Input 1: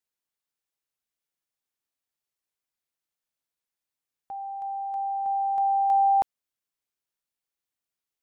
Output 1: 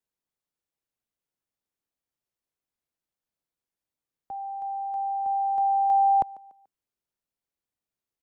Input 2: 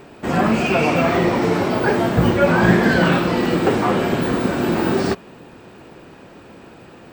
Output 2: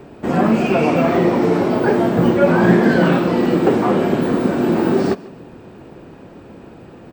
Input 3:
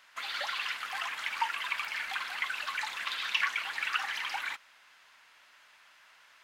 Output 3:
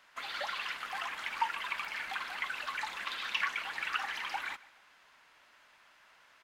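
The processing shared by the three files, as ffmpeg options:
ffmpeg -i in.wav -filter_complex "[0:a]tiltshelf=frequency=880:gain=5,acrossover=split=150[link_01][link_02];[link_01]acompressor=threshold=-37dB:ratio=6[link_03];[link_02]aecho=1:1:145|290|435:0.0891|0.0312|0.0109[link_04];[link_03][link_04]amix=inputs=2:normalize=0" out.wav

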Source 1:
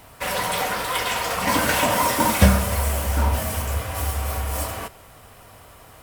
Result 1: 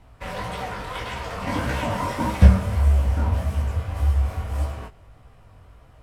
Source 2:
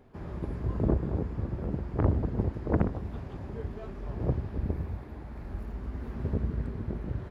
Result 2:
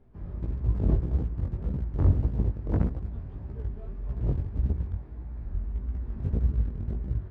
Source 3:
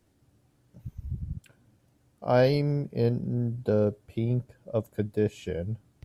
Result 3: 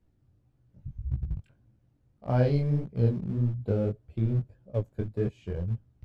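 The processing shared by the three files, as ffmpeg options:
ffmpeg -i in.wav -filter_complex "[0:a]asplit=2[link_01][link_02];[link_02]aeval=exprs='val(0)*gte(abs(val(0)),0.0422)':channel_layout=same,volume=-9dB[link_03];[link_01][link_03]amix=inputs=2:normalize=0,aemphasis=mode=reproduction:type=bsi,flanger=delay=15:depth=7.6:speed=1.7,volume=-6.5dB" out.wav

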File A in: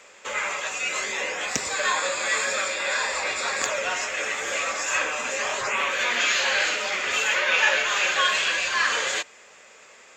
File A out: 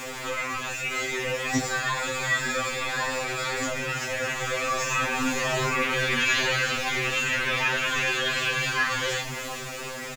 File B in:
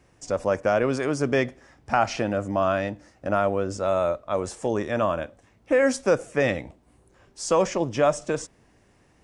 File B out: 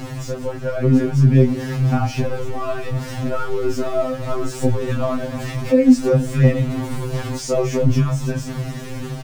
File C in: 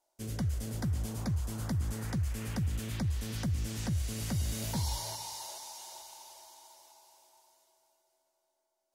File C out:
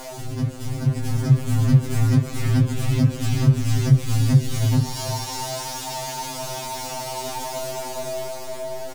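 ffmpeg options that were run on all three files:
ffmpeg -i in.wav -filter_complex "[0:a]aeval=exprs='val(0)+0.5*0.0531*sgn(val(0))':channel_layout=same,dynaudnorm=framelen=210:gausssize=11:maxgain=8.5dB,aecho=1:1:302:0.0891,flanger=delay=19:depth=2.8:speed=1.9,highshelf=frequency=8200:gain=-7.5,acrossover=split=260[link_01][link_02];[link_02]acompressor=threshold=-60dB:ratio=1.5[link_03];[link_01][link_03]amix=inputs=2:normalize=0,lowshelf=frequency=440:gain=3,alimiter=level_in=12.5dB:limit=-1dB:release=50:level=0:latency=1,afftfilt=real='re*2.45*eq(mod(b,6),0)':imag='im*2.45*eq(mod(b,6),0)':win_size=2048:overlap=0.75,volume=-2.5dB" out.wav

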